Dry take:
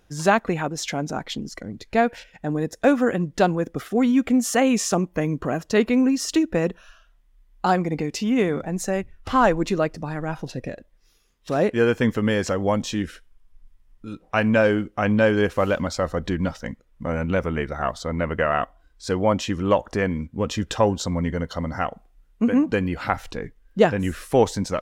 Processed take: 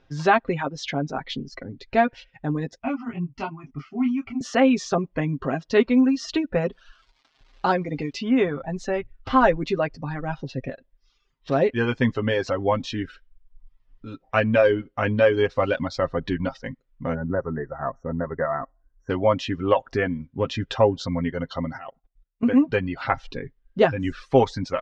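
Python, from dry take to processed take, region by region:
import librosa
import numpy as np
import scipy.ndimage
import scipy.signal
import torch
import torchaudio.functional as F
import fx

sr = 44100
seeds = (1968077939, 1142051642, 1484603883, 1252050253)

y = fx.chain(x, sr, fx.lowpass(hz=5400.0, slope=12),
    fx.fixed_phaser(hz=2500.0, stages=8),
    fx.detune_double(cents=11), at=(2.78, 4.41))
y = fx.gate_hold(y, sr, open_db=-48.0, close_db=-56.0, hold_ms=71.0, range_db=-21, attack_ms=1.4, release_ms=100.0, at=(6.7, 8.11), fade=0.02)
y = fx.dmg_crackle(y, sr, seeds[0], per_s=470.0, level_db=-42.0, at=(6.7, 8.11), fade=0.02)
y = fx.chain(y, sr, fx.brickwall_bandstop(low_hz=2000.0, high_hz=5500.0),
    fx.spacing_loss(db_at_10k=36), at=(17.14, 19.1))
y = fx.chain(y, sr, fx.lowpass(hz=8200.0, slope=12),
    fx.level_steps(step_db=18), at=(21.77, 22.46))
y = fx.dereverb_blind(y, sr, rt60_s=0.77)
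y = scipy.signal.sosfilt(scipy.signal.butter(4, 4800.0, 'lowpass', fs=sr, output='sos'), y)
y = y + 0.58 * np.pad(y, (int(7.5 * sr / 1000.0), 0))[:len(y)]
y = F.gain(torch.from_numpy(y), -1.0).numpy()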